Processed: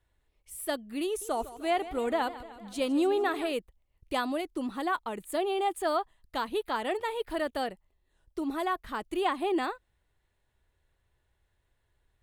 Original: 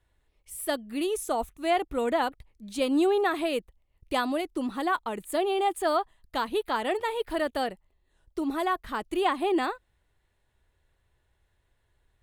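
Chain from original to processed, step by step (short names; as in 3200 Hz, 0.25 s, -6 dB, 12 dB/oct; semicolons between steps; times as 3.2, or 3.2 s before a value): 1.06–3.52 warbling echo 0.152 s, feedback 60%, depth 98 cents, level -15.5 dB; gain -3 dB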